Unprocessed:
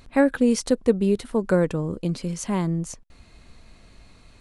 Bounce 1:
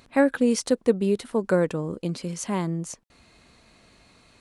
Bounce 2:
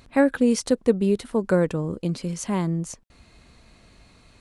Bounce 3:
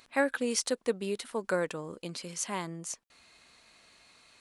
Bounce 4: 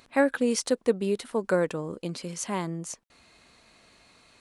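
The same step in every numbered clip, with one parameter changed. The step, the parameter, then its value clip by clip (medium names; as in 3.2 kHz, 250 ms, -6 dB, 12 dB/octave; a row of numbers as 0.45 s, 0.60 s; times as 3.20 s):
high-pass, cutoff frequency: 200 Hz, 52 Hz, 1.3 kHz, 510 Hz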